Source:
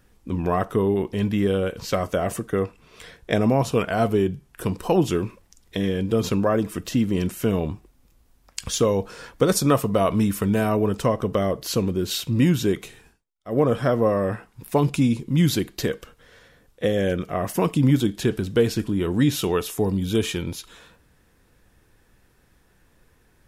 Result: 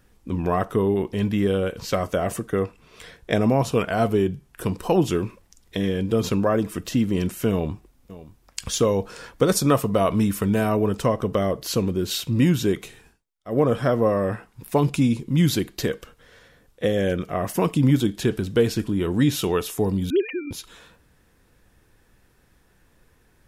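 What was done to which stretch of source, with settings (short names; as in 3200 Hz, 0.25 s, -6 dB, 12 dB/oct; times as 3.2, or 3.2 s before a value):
7.51–8.67 echo throw 0.58 s, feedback 10%, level -17 dB
20.1–20.51 sine-wave speech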